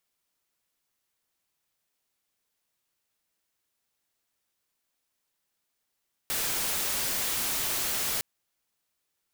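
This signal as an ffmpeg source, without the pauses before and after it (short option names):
-f lavfi -i "anoisesrc=c=white:a=0.058:d=1.91:r=44100:seed=1"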